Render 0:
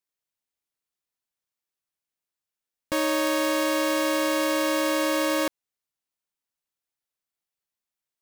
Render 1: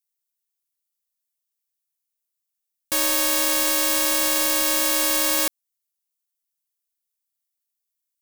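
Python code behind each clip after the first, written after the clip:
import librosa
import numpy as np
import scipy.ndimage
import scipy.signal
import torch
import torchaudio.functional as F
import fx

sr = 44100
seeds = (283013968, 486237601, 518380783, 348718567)

y = scipy.signal.lfilter([1.0, -0.9], [1.0], x)
y = fx.leveller(y, sr, passes=2)
y = F.gain(torch.from_numpy(y), 8.5).numpy()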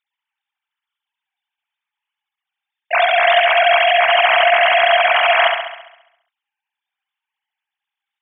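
y = fx.sine_speech(x, sr)
y = fx.room_flutter(y, sr, wall_m=11.6, rt60_s=0.85)
y = F.gain(torch.from_numpy(y), 6.5).numpy()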